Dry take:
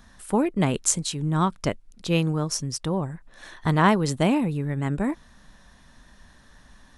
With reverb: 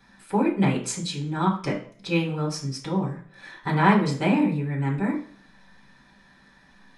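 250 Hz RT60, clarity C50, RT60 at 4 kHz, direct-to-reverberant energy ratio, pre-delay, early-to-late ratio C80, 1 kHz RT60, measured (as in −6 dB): 0.50 s, 9.5 dB, 0.45 s, −8.5 dB, 3 ms, 14.0 dB, 0.50 s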